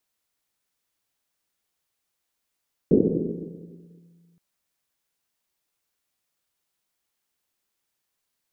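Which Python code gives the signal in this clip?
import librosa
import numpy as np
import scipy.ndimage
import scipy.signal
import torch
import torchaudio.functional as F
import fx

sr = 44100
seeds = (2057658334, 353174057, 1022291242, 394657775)

y = fx.risset_drum(sr, seeds[0], length_s=1.47, hz=170.0, decay_s=2.76, noise_hz=320.0, noise_width_hz=280.0, noise_pct=75)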